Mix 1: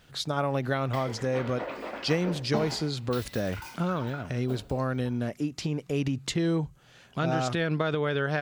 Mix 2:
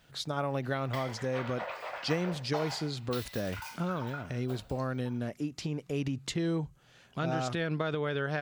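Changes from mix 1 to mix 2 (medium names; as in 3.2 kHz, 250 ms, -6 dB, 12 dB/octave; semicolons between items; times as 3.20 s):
speech -4.5 dB; background: add high-pass 600 Hz 24 dB/octave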